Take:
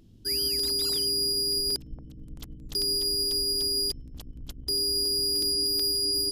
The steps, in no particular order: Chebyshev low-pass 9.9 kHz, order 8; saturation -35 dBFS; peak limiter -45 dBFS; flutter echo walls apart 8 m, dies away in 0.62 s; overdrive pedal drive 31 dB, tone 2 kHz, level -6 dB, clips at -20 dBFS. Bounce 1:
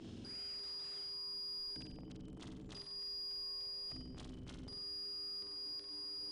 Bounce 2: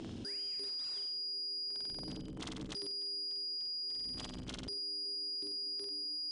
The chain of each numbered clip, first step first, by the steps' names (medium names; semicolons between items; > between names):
overdrive pedal > Chebyshev low-pass > peak limiter > flutter echo > saturation; flutter echo > peak limiter > overdrive pedal > saturation > Chebyshev low-pass